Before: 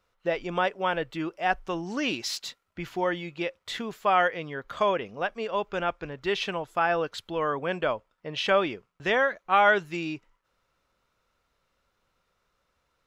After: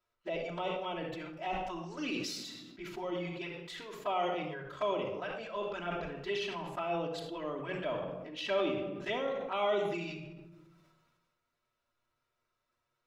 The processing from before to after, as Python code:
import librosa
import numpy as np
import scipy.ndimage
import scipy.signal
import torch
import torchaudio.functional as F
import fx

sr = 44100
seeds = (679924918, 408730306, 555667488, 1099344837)

y = fx.low_shelf(x, sr, hz=110.0, db=-7.5)
y = fx.env_flanger(y, sr, rest_ms=8.6, full_db=-23.0)
y = fx.room_shoebox(y, sr, seeds[0], volume_m3=3100.0, walls='furnished', distance_m=2.9)
y = fx.sustainer(y, sr, db_per_s=33.0)
y = F.gain(torch.from_numpy(y), -9.0).numpy()